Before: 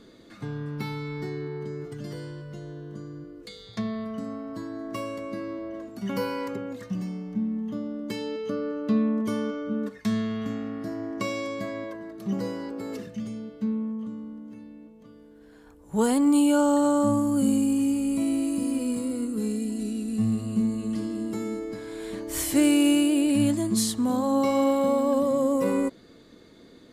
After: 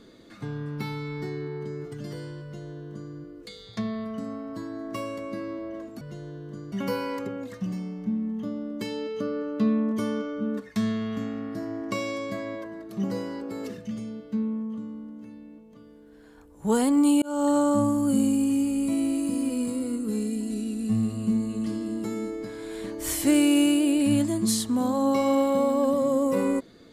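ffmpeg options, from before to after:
-filter_complex "[0:a]asplit=4[a][b][c][d];[a]atrim=end=6.012[e];[b]atrim=start=2.428:end=3.142[f];[c]atrim=start=6.008:end=16.51,asetpts=PTS-STARTPTS,afade=t=out:st=10.498:d=0.004:c=hsin[g];[d]atrim=start=16.51,asetpts=PTS-STARTPTS,afade=t=in:d=0.28[h];[e][f]acrossfade=d=0.004:c1=hsin:c2=hsin[i];[g][h]concat=n=2:v=0:a=1[j];[i][j]acrossfade=d=0.004:c1=hsin:c2=hsin"

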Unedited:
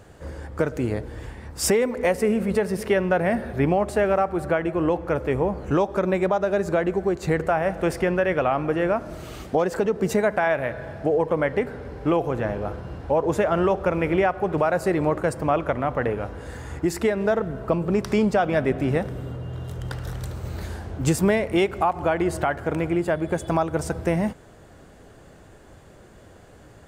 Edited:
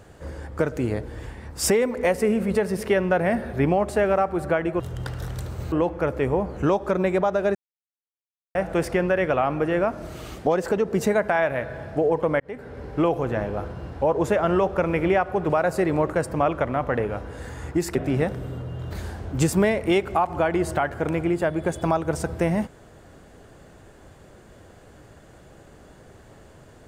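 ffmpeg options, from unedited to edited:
-filter_complex "[0:a]asplit=8[a][b][c][d][e][f][g][h];[a]atrim=end=4.802[i];[b]atrim=start=19.648:end=20.572[j];[c]atrim=start=4.798:end=6.63,asetpts=PTS-STARTPTS,afade=t=out:st=1.828:d=0.004:c=hsin[k];[d]atrim=start=6.63:end=7.63,asetpts=PTS-STARTPTS,volume=0[l];[e]atrim=start=7.63:end=11.48,asetpts=PTS-STARTPTS,afade=t=in:d=0.004:c=hsin,afade=t=out:st=3.846:d=0.004:c=hsin[m];[f]atrim=start=11.48:end=17.032,asetpts=PTS-STARTPTS,afade=t=in:d=0.44[n];[g]atrim=start=18.688:end=19.652[o];[h]atrim=start=20.568[p];[i][j]acrossfade=d=0.004:c1=hsin:c2=hsin[q];[k][l][m][n]concat=n=4:v=0:a=1[r];[q][r]acrossfade=d=0.004:c1=hsin:c2=hsin[s];[s][o]acrossfade=d=0.004:c1=hsin:c2=hsin[t];[t][p]acrossfade=d=0.004:c1=hsin:c2=hsin"

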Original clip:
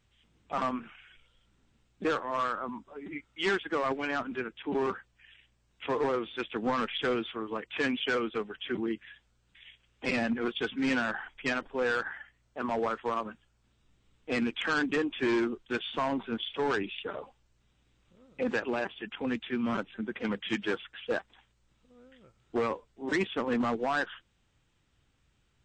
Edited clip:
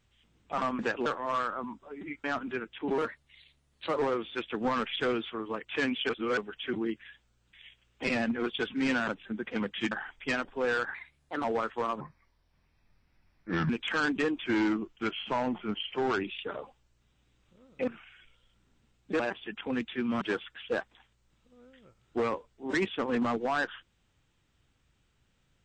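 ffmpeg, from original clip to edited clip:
-filter_complex "[0:a]asplit=19[a][b][c][d][e][f][g][h][i][j][k][l][m][n][o][p][q][r][s];[a]atrim=end=0.792[t];[b]atrim=start=18.468:end=18.742[u];[c]atrim=start=2.108:end=3.292[v];[d]atrim=start=4.078:end=4.824[w];[e]atrim=start=4.82:end=5.98,asetpts=PTS-STARTPTS,asetrate=52038,aresample=44100[x];[f]atrim=start=5.976:end=8.112[y];[g]atrim=start=8.108:end=8.392,asetpts=PTS-STARTPTS,areverse[z];[h]atrim=start=8.388:end=11.092[aa];[i]atrim=start=19.758:end=20.602[ab];[j]atrim=start=11.088:end=12.124[ac];[k]atrim=start=12.12:end=12.72,asetpts=PTS-STARTPTS,asetrate=52920,aresample=44100[ad];[l]atrim=start=12.716:end=13.284[ae];[m]atrim=start=13.28:end=14.43,asetpts=PTS-STARTPTS,asetrate=29988,aresample=44100[af];[n]atrim=start=14.426:end=15.174[ag];[o]atrim=start=15.17:end=16.79,asetpts=PTS-STARTPTS,asetrate=40572,aresample=44100,atrim=end_sample=77654,asetpts=PTS-STARTPTS[ah];[p]atrim=start=16.786:end=18.472[ai];[q]atrim=start=0.788:end=2.112[aj];[r]atrim=start=18.738:end=19.762[ak];[s]atrim=start=20.598[al];[t][u]acrossfade=d=0.004:c1=hsin:c2=hsin[am];[am][v]acrossfade=d=0.004:c1=hsin:c2=hsin[an];[an][w]acrossfade=d=0.004:c1=hsin:c2=hsin[ao];[ao][x]acrossfade=d=0.004:c1=hsin:c2=hsin[ap];[ap][y]acrossfade=d=0.004:c1=hsin:c2=hsin[aq];[aq][z]acrossfade=d=0.004:c1=hsin:c2=hsin[ar];[ar][aa]acrossfade=d=0.004:c1=hsin:c2=hsin[as];[as][ab]acrossfade=d=0.004:c1=hsin:c2=hsin[at];[at][ac]acrossfade=d=0.004:c1=hsin:c2=hsin[au];[au][ad]acrossfade=d=0.004:c1=hsin:c2=hsin[av];[av][ae]acrossfade=d=0.004:c1=hsin:c2=hsin[aw];[aw][af]acrossfade=d=0.004:c1=hsin:c2=hsin[ax];[ax][ag]acrossfade=d=0.004:c1=hsin:c2=hsin[ay];[ay][ah]acrossfade=d=0.004:c1=hsin:c2=hsin[az];[az][ai]acrossfade=d=0.004:c1=hsin:c2=hsin[ba];[ba][aj]acrossfade=d=0.004:c1=hsin:c2=hsin[bb];[bb][ak]acrossfade=d=0.004:c1=hsin:c2=hsin[bc];[bc][al]acrossfade=d=0.004:c1=hsin:c2=hsin"

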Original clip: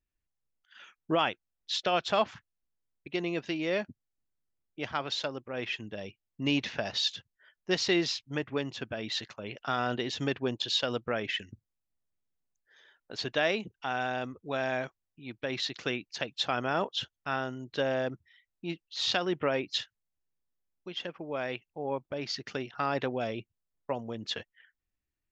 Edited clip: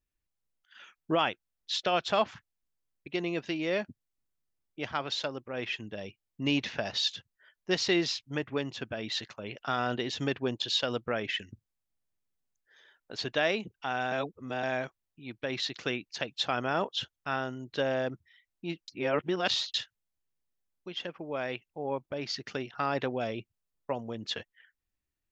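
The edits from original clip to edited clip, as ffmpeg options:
-filter_complex "[0:a]asplit=5[a][b][c][d][e];[a]atrim=end=14.122[f];[b]atrim=start=14.118:end=14.632,asetpts=PTS-STARTPTS,areverse[g];[c]atrim=start=14.628:end=18.882[h];[d]atrim=start=18.878:end=19.742,asetpts=PTS-STARTPTS,areverse[i];[e]atrim=start=19.738[j];[f][g]acrossfade=d=0.004:c1=hsin:c2=hsin[k];[k][h]acrossfade=d=0.004:c1=hsin:c2=hsin[l];[l][i]acrossfade=d=0.004:c1=hsin:c2=hsin[m];[m][j]acrossfade=d=0.004:c1=hsin:c2=hsin"

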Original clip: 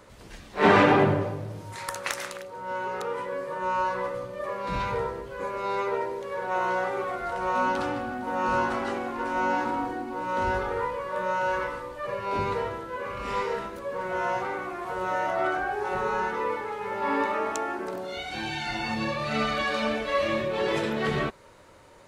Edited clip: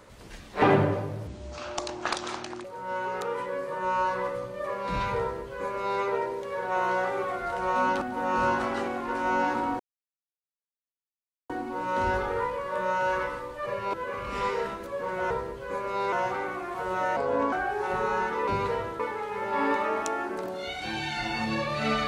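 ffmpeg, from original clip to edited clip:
-filter_complex "[0:a]asplit=13[a][b][c][d][e][f][g][h][i][j][k][l][m];[a]atrim=end=0.622[n];[b]atrim=start=0.908:end=1.564[o];[c]atrim=start=1.56:end=2.44,asetpts=PTS-STARTPTS,asetrate=28224,aresample=44100[p];[d]atrim=start=2.436:end=7.812[q];[e]atrim=start=8.118:end=9.9,asetpts=PTS-STARTPTS,afade=t=out:st=1.778:d=0.004:c=hsin,apad=pad_dur=1.7[r];[f]atrim=start=9.9:end=12.342,asetpts=PTS-STARTPTS,afade=t=in:d=0.004:c=hsin[s];[g]atrim=start=12.858:end=14.232[t];[h]atrim=start=4.998:end=5.822[u];[i]atrim=start=14.228:end=15.274[v];[j]atrim=start=15.27:end=15.54,asetpts=PTS-STARTPTS,asetrate=33075,aresample=44100[w];[k]atrim=start=15.536:end=16.492[x];[l]atrim=start=12.338:end=12.862[y];[m]atrim=start=16.488[z];[n][o]acrossfade=d=0.004:c1=hsin:c2=hsin[aa];[aa][p]acrossfade=d=0.004:c1=hsin:c2=hsin[ab];[ab][q]acrossfade=d=0.004:c1=hsin:c2=hsin[ac];[r][s]concat=n=2:v=0:a=1[ad];[ac][ad]acrossfade=d=0.004:c1=hsin:c2=hsin[ae];[ae][t]acrossfade=d=0.004:c1=hsin:c2=hsin[af];[af][u]acrossfade=d=0.004:c1=hsin:c2=hsin[ag];[ag][v]acrossfade=d=0.004:c1=hsin:c2=hsin[ah];[ah][w]acrossfade=d=0.004:c1=hsin:c2=hsin[ai];[ai][x]acrossfade=d=0.004:c1=hsin:c2=hsin[aj];[aj][y]acrossfade=d=0.004:c1=hsin:c2=hsin[ak];[ak][z]acrossfade=d=0.004:c1=hsin:c2=hsin"

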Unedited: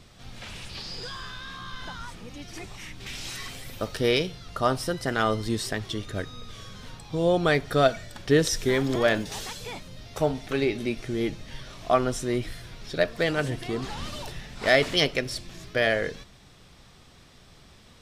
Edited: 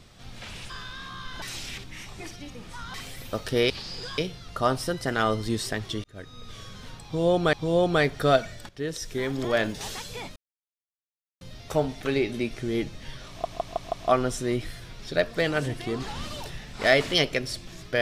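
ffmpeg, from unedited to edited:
-filter_complex "[0:a]asplit=14[a][b][c][d][e][f][g][h][i][j][k][l][m][n];[a]atrim=end=0.702[o];[b]atrim=start=1.178:end=1.902[p];[c]atrim=start=1.898:end=3.422,asetpts=PTS-STARTPTS,areverse[q];[d]atrim=start=3.418:end=4.182[r];[e]atrim=start=0.698:end=1.182[s];[f]atrim=start=4.178:end=6.04,asetpts=PTS-STARTPTS,afade=t=out:st=1.858:d=0.004:c=hsin[t];[g]atrim=start=6.04:end=7.532,asetpts=PTS-STARTPTS,afade=t=in:d=0.48[u];[h]atrim=start=7.038:end=8.2,asetpts=PTS-STARTPTS,afade=t=out:st=1.158:d=0.004:c=hsin:silence=0.158489[v];[i]atrim=start=8.2:end=9.87,asetpts=PTS-STARTPTS,afade=t=in:d=1.16:silence=0.158489,afade=t=out:st=1.666:d=0.004:c=hsin,apad=pad_dur=1.05[w];[j]atrim=start=9.87:end=11.912,asetpts=PTS-STARTPTS,afade=t=in:d=0.004:c=hsin[x];[k]atrim=start=11.748:end=11.912[y];[l]atrim=start=11.748:end=11.912[z];[m]atrim=start=11.748:end=11.912[aa];[n]atrim=start=11.748[ab];[o][p]acrossfade=d=0.004:c1=hsin:c2=hsin[ac];[ac][q]acrossfade=d=0.004:c1=hsin:c2=hsin[ad];[ad][r]acrossfade=d=0.004:c1=hsin:c2=hsin[ae];[ae][s]acrossfade=d=0.004:c1=hsin:c2=hsin[af];[t][u]concat=n=2:v=0:a=1[ag];[af][ag]acrossfade=d=0.004:c1=hsin:c2=hsin[ah];[v][w][x]concat=n=3:v=0:a=1[ai];[ah][ai]acrossfade=d=0.004:c1=hsin:c2=hsin[aj];[aj][y]acrossfade=d=0.004:c1=hsin:c2=hsin[ak];[ak][z]acrossfade=d=0.004:c1=hsin:c2=hsin[al];[al][aa]acrossfade=d=0.004:c1=hsin:c2=hsin[am];[am][ab]acrossfade=d=0.004:c1=hsin:c2=hsin"

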